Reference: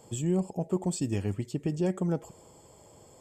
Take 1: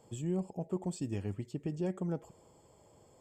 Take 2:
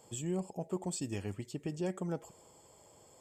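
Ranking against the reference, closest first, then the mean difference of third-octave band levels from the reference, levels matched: 1, 2; 1.0, 3.0 decibels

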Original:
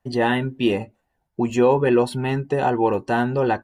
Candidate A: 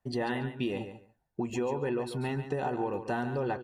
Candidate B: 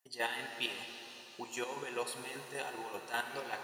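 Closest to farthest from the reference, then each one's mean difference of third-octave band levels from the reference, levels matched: A, B; 4.0, 14.5 decibels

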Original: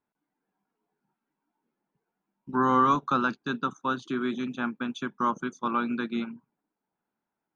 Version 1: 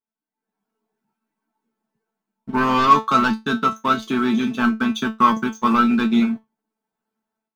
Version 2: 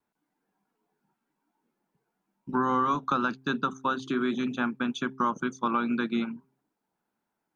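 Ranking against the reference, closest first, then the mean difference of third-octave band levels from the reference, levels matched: 2, 1; 2.0, 5.5 decibels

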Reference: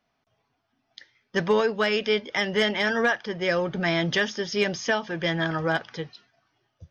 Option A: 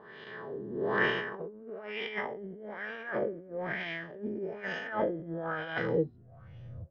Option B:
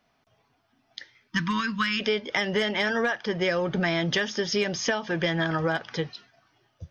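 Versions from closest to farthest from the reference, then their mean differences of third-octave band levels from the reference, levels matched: B, A; 3.0, 11.5 decibels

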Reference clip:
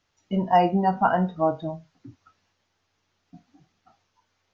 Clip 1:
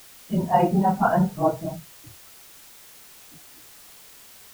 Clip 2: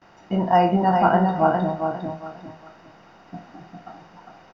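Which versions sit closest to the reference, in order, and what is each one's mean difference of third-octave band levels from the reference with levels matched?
2, 1; 6.0, 9.0 decibels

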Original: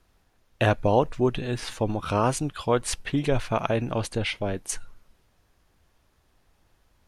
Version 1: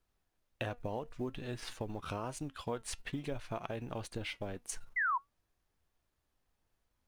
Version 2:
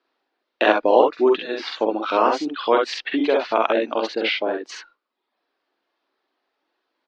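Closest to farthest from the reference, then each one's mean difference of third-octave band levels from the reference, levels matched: 1, 2; 4.0, 10.0 decibels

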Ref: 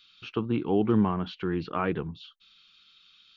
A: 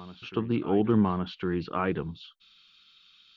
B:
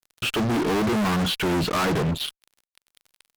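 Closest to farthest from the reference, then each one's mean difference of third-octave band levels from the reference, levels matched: A, B; 1.0, 11.0 decibels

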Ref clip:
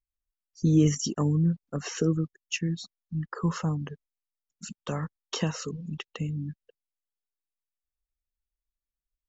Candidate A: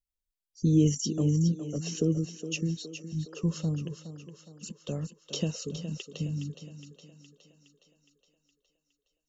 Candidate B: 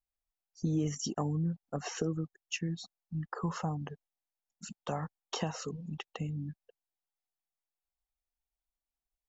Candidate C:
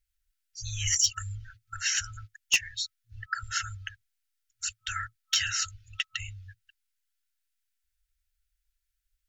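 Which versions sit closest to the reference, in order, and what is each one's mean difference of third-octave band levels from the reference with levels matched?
B, A, C; 2.0, 5.5, 13.5 decibels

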